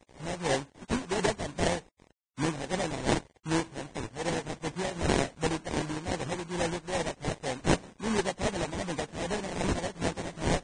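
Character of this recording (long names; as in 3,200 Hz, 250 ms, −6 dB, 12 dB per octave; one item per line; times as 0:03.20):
a quantiser's noise floor 8 bits, dither none
tremolo triangle 2.6 Hz, depth 60%
aliases and images of a low sample rate 1,300 Hz, jitter 20%
Ogg Vorbis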